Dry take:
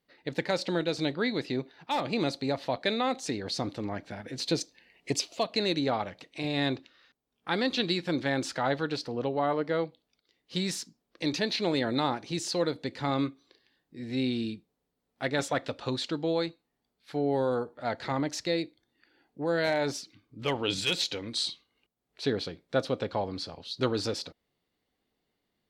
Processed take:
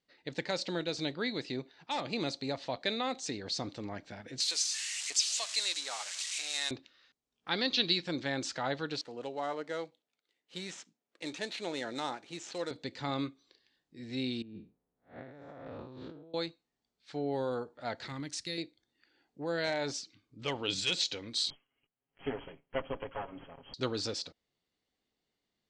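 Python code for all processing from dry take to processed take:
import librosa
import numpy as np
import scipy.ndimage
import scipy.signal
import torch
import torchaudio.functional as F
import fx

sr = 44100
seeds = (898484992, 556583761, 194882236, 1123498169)

y = fx.chain(x, sr, fx.crossing_spikes(level_db=-21.5),
    fx.highpass(hz=1100.0, slope=12), at=(4.4, 6.71))
y = fx.chain(y, sr, fx.lowpass(hz=5300.0, slope=24),
    fx.high_shelf(hz=4000.0, db=10.0), at=(7.5, 8.03))
y = fx.chain(y, sr, fx.median_filter(points=9),
    fx.highpass(hz=440.0, slope=6),
    fx.notch(hz=1100.0, q=14.0), at=(9.01, 12.71))
y = fx.chain(y, sr, fx.spec_blur(span_ms=171.0),
    fx.lowpass(hz=1300.0, slope=12),
    fx.over_compress(threshold_db=-42.0, ratio=-1.0), at=(14.42, 16.34))
y = fx.chain(y, sr, fx.peak_eq(hz=670.0, db=-13.5, octaves=1.6),
    fx.resample_bad(factor=3, down='none', up='hold'), at=(18.07, 18.58))
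y = fx.chain(y, sr, fx.lower_of_two(delay_ms=7.3),
    fx.brickwall_lowpass(high_hz=3300.0), at=(21.5, 23.74))
y = scipy.signal.sosfilt(scipy.signal.butter(6, 8000.0, 'lowpass', fs=sr, output='sos'), y)
y = fx.high_shelf(y, sr, hz=3300.0, db=8.0)
y = y * librosa.db_to_amplitude(-6.5)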